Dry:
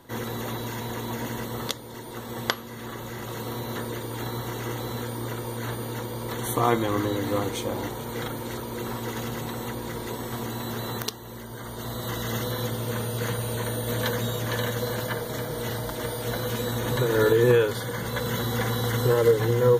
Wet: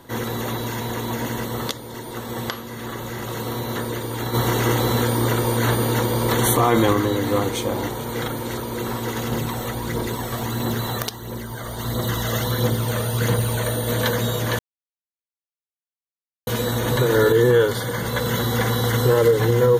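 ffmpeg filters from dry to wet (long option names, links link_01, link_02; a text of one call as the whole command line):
ffmpeg -i in.wav -filter_complex "[0:a]asplit=3[link_01][link_02][link_03];[link_01]afade=type=out:start_time=4.33:duration=0.02[link_04];[link_02]acontrast=67,afade=type=in:start_time=4.33:duration=0.02,afade=type=out:start_time=6.92:duration=0.02[link_05];[link_03]afade=type=in:start_time=6.92:duration=0.02[link_06];[link_04][link_05][link_06]amix=inputs=3:normalize=0,asplit=3[link_07][link_08][link_09];[link_07]afade=type=out:start_time=9.3:duration=0.02[link_10];[link_08]aphaser=in_gain=1:out_gain=1:delay=1.8:decay=0.41:speed=1.5:type=triangular,afade=type=in:start_time=9.3:duration=0.02,afade=type=out:start_time=13.73:duration=0.02[link_11];[link_09]afade=type=in:start_time=13.73:duration=0.02[link_12];[link_10][link_11][link_12]amix=inputs=3:normalize=0,asettb=1/sr,asplit=3[link_13][link_14][link_15];[link_13]atrim=end=17.144[link_16];[link_14]atrim=start=17.14:end=17.78,asetpts=PTS-STARTPTS,afade=type=in:duration=0.004:curve=qsin,afade=type=out:start_time=0.636:duration=0.004:curve=qsin,asuperstop=centerf=2500:order=20:qfactor=6.7[link_17];[link_15]atrim=start=17.776[link_18];[link_16][link_17]acrossfade=duration=0.004:curve1=hsin:curve2=qsin[link_19];[link_19][link_18]acrossfade=duration=0.004:curve1=qsin:curve2=hsin,asplit=3[link_20][link_21][link_22];[link_20]atrim=end=14.59,asetpts=PTS-STARTPTS,afade=type=out:start_time=14.586:duration=0.004:curve=hsin[link_23];[link_21]atrim=start=14.59:end=16.47,asetpts=PTS-STARTPTS,volume=0[link_24];[link_22]atrim=start=16.47,asetpts=PTS-STARTPTS,afade=type=in:duration=0.004:curve=hsin[link_25];[link_23][link_24][link_25]concat=n=3:v=0:a=1,alimiter=level_in=12dB:limit=-1dB:release=50:level=0:latency=1,volume=-6.5dB" out.wav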